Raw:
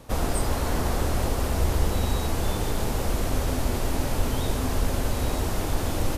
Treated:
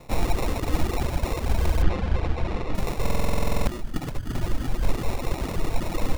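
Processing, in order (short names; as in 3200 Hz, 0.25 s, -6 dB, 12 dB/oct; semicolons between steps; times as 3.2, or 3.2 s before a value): 3.71–4.37 negative-ratio compressor -27 dBFS, ratio -0.5; reverb RT60 1.1 s, pre-delay 6 ms, DRR 3.5 dB; vibrato 1.1 Hz 7.7 cents; 0.43–0.98 bell 310 Hz +6.5 dB 0.2 oct; 3.31–4.83 spectral gain 370–1800 Hz -10 dB; sample-and-hold 28×; reverb removal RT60 1.5 s; 1.82–2.75 LPF 3600 Hz 12 dB/oct; stuck buffer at 3.02, samples 2048, times 13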